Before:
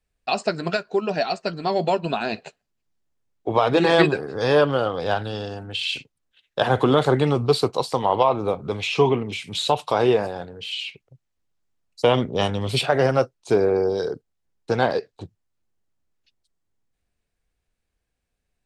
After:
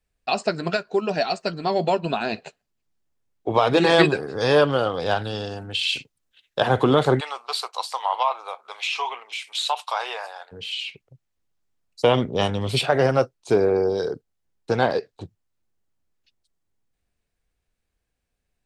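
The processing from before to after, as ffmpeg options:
-filter_complex "[0:a]asettb=1/sr,asplit=3[a][b][c];[a]atrim=end=0.944[d];[b]atrim=start=0.94:end=1.53,asetpts=PTS-STARTPTS,afade=t=in:d=0.004:c=qsin,afade=t=out:st=0.586:d=0.004:c=qsin,highshelf=f=7.5k:g=7[e];[c]atrim=start=1.526[f];[d][e]acrossfade=d=0.004:c1=hsin:c2=qsin[g];[g][f]acrossfade=d=0.004:c1=qsin:c2=hsin,asettb=1/sr,asplit=3[h][i][j];[h]atrim=end=3.544[k];[i]atrim=start=3.54:end=6.6,asetpts=PTS-STARTPTS,afade=t=in:d=0.004:c=qsin,afade=t=out:st=3.056:d=0.004:c=qsin,highshelf=f=3.4k:g=5[l];[j]atrim=start=6.596[m];[k][l]acrossfade=d=0.004:c1=hsin:c2=qsin[n];[n][m]acrossfade=d=0.004:c1=qsin:c2=hsin,asplit=3[o][p][q];[o]afade=t=out:st=7.19:d=0.02[r];[p]highpass=f=800:w=0.5412,highpass=f=800:w=1.3066,afade=t=in:st=7.19:d=0.02,afade=t=out:st=10.51:d=0.02[s];[q]afade=t=in:st=10.51:d=0.02[t];[r][s][t]amix=inputs=3:normalize=0"

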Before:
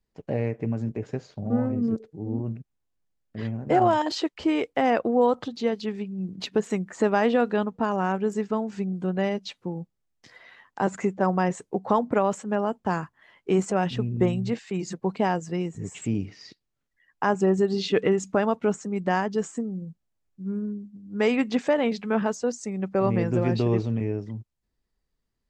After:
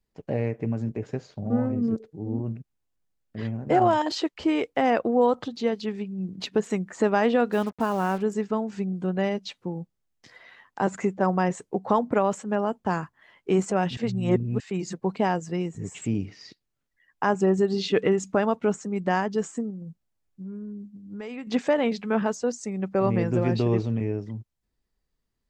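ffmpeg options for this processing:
-filter_complex "[0:a]asplit=3[a][b][c];[a]afade=t=out:st=7.51:d=0.02[d];[b]acrusher=bits=6:mix=0:aa=0.5,afade=t=in:st=7.51:d=0.02,afade=t=out:st=8.21:d=0.02[e];[c]afade=t=in:st=8.21:d=0.02[f];[d][e][f]amix=inputs=3:normalize=0,asettb=1/sr,asplit=3[g][h][i];[g]atrim=end=19.704[j];[h]atrim=start=19.7:end=21.47,asetpts=PTS-STARTPTS,afade=t=in:d=0.004:c=qsin,afade=t=out:st=1.766:d=0.004:c=qsin,acompressor=threshold=-34dB:ratio=6:attack=3.2:release=140:knee=1:detection=peak[k];[i]atrim=start=21.466[l];[j][k]acrossfade=d=0.004:c1=hsin:c2=qsin[m];[m][l]acrossfade=d=0.004:c1=qsin:c2=hsin,asplit=3[n][o][p];[n]atrim=end=13.972[q];[o]atrim=start=13.968:end=14.602,asetpts=PTS-STARTPTS,areverse[r];[p]atrim=start=14.598[s];[q][r]acrossfade=d=0.004:c1=hsin:c2=hsin[t];[t][s]acrossfade=d=0.004:c1=hsin:c2=hsin"

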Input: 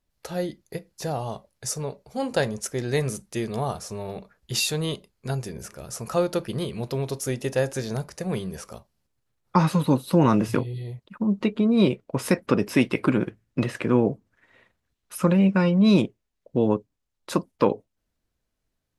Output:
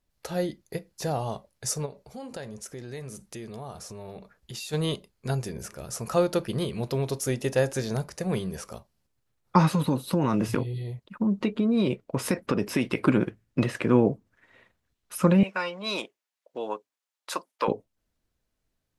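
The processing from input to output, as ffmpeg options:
-filter_complex "[0:a]asplit=3[a][b][c];[a]afade=t=out:st=1.85:d=0.02[d];[b]acompressor=threshold=-39dB:ratio=3:attack=3.2:release=140:knee=1:detection=peak,afade=t=in:st=1.85:d=0.02,afade=t=out:st=4.72:d=0.02[e];[c]afade=t=in:st=4.72:d=0.02[f];[d][e][f]amix=inputs=3:normalize=0,asettb=1/sr,asplit=3[g][h][i];[g]atrim=end=9.714[j];[h]atrim=start=9.71:end=12.99,asetpts=PTS-STARTPTS,afade=t=in:d=0.004:c=qsin,afade=t=out:st=3.276:d=0.004:c=qsin,acompressor=threshold=-19dB:ratio=6:attack=3.2:release=140:knee=1:detection=peak[k];[i]atrim=start=12.986[l];[j][k]acrossfade=d=0.004:c1=hsin:c2=qsin[m];[m][l]acrossfade=d=0.004:c1=qsin:c2=hsin,asettb=1/sr,asplit=3[n][o][p];[n]atrim=end=15.434[q];[o]atrim=start=15.43:end=17.68,asetpts=PTS-STARTPTS,afade=t=in:d=0.004:c=qsin,afade=t=out:st=2.246:d=0.004:c=qsin,highpass=790[r];[p]atrim=start=17.676[s];[q][r]acrossfade=d=0.004:c1=hsin:c2=qsin[t];[t][s]acrossfade=d=0.004:c1=qsin:c2=hsin"

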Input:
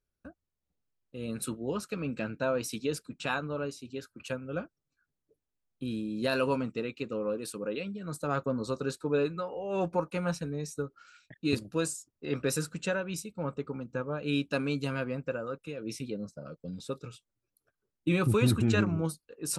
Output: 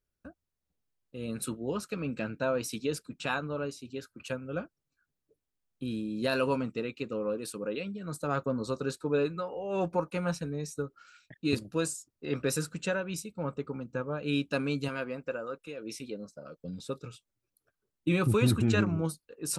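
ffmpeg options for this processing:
-filter_complex "[0:a]asettb=1/sr,asplit=3[a][b][c];[a]atrim=end=14.884[d];[b]atrim=start=14.88:end=16.61,asetpts=PTS-STARTPTS,afade=t=in:d=0.004:c=qsin,afade=t=out:st=1.726:d=0.004:c=qsin,equalizer=f=110:w=0.74:g=-10.5[e];[c]atrim=start=16.606[f];[d][e]acrossfade=d=0.004:c1=hsin:c2=qsin[g];[g][f]acrossfade=d=0.004:c1=qsin:c2=hsin"

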